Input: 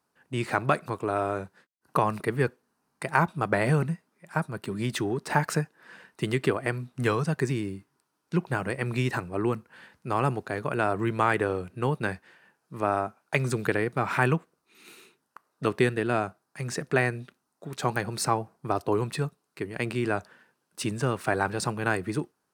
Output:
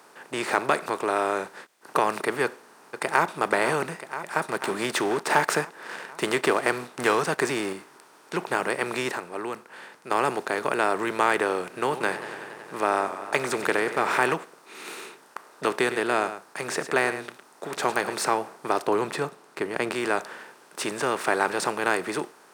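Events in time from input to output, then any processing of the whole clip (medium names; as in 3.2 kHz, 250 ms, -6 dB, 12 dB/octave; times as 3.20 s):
2.44–3.26 s: echo throw 490 ms, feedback 60%, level -15.5 dB
4.42–7.73 s: waveshaping leveller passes 1
9.12–10.11 s: gain -10 dB
11.64–14.34 s: modulated delay 93 ms, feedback 72%, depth 109 cents, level -18.5 dB
15.75–18.14 s: delay 108 ms -17.5 dB
18.87–19.92 s: tilt EQ -2 dB/octave
whole clip: spectral levelling over time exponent 0.6; high-pass 350 Hz 12 dB/octave; trim -1 dB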